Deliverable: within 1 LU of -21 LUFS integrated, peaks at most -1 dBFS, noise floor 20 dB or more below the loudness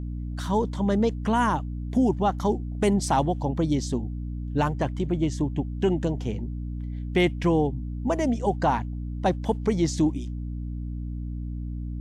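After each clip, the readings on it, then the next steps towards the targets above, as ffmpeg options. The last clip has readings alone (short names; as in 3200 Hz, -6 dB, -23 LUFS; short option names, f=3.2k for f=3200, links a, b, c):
hum 60 Hz; harmonics up to 300 Hz; hum level -29 dBFS; loudness -26.5 LUFS; peak -11.5 dBFS; loudness target -21.0 LUFS
-> -af "bandreject=f=60:t=h:w=6,bandreject=f=120:t=h:w=6,bandreject=f=180:t=h:w=6,bandreject=f=240:t=h:w=6,bandreject=f=300:t=h:w=6"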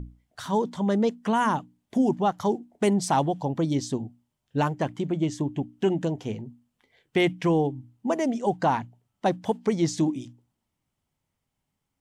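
hum none; loudness -26.5 LUFS; peak -12.0 dBFS; loudness target -21.0 LUFS
-> -af "volume=5.5dB"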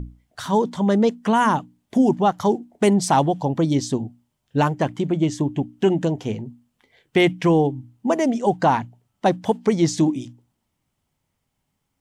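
loudness -21.0 LUFS; peak -6.5 dBFS; noise floor -76 dBFS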